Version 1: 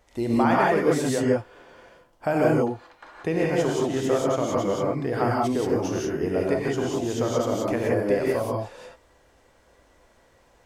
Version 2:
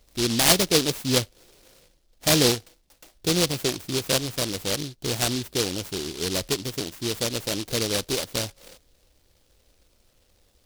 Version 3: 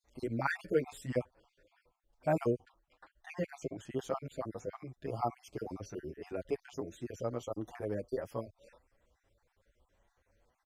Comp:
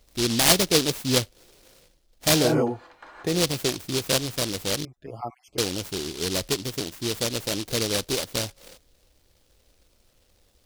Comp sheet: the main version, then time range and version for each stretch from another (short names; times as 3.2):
2
2.44–3.33 from 1, crossfade 0.24 s
4.85–5.58 from 3